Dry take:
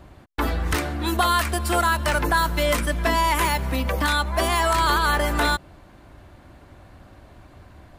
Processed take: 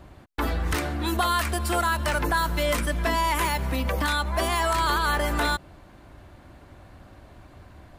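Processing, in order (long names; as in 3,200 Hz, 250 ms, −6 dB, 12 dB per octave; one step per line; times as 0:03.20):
in parallel at −1 dB: brickwall limiter −18 dBFS, peak gain reduction 8 dB
on the sum: level −6.5 dB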